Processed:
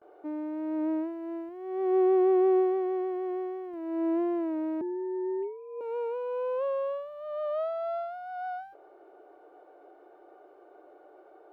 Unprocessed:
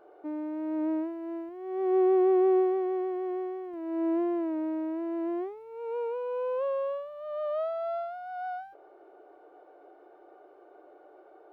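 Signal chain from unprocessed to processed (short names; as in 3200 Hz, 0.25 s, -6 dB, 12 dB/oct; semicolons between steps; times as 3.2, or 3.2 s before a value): 4.81–5.81 sine-wave speech; gate with hold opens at -51 dBFS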